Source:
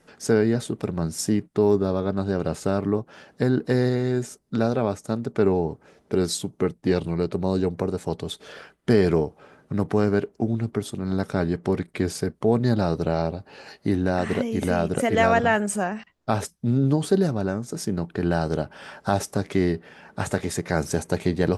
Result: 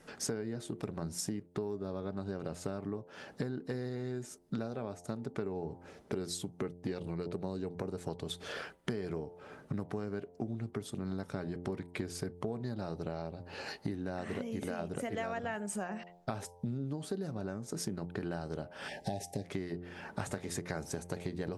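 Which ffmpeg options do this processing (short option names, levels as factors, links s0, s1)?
-filter_complex "[0:a]asettb=1/sr,asplit=3[s0][s1][s2];[s0]atrim=end=18.884[s3];[s1]atrim=start=18.88:end=19.45,asetpts=PTS-STARTPTS,afade=t=in:d=0.004:c=qsin,afade=t=out:st=0.566:d=0.004:c=qsin,asuperstop=centerf=1200:order=12:qfactor=1.4[s4];[s2]atrim=start=19.446[s5];[s3][s4]acrossfade=d=0.004:c1=hsin:c2=qsin[s6];[s6][s5]acrossfade=d=0.004:c1=qsin:c2=hsin,bandreject=f=87.87:t=h:w=4,bandreject=f=175.74:t=h:w=4,bandreject=f=263.61:t=h:w=4,bandreject=f=351.48:t=h:w=4,bandreject=f=439.35:t=h:w=4,bandreject=f=527.22:t=h:w=4,bandreject=f=615.09:t=h:w=4,bandreject=f=702.96:t=h:w=4,bandreject=f=790.83:t=h:w=4,bandreject=f=878.7:t=h:w=4,bandreject=f=966.57:t=h:w=4,acompressor=threshold=0.0178:ratio=12,volume=1.12"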